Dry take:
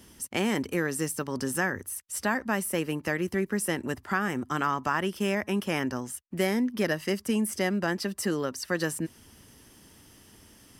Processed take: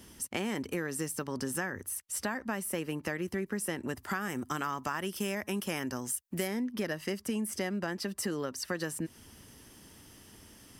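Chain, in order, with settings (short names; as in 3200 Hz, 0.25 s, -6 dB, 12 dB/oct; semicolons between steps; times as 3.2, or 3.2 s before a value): 3.97–6.48 high shelf 5600 Hz +11 dB; compressor 3:1, threshold -32 dBFS, peak gain reduction 9 dB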